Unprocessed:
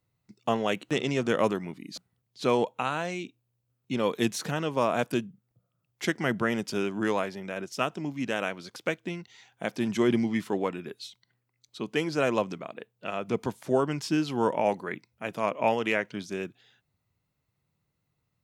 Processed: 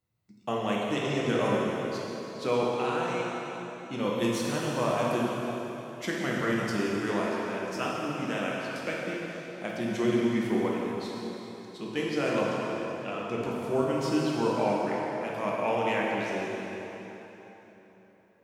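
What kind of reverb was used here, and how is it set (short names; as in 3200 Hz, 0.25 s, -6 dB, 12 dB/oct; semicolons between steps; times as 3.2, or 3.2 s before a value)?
plate-style reverb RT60 3.8 s, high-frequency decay 0.8×, DRR -4.5 dB; gain -6 dB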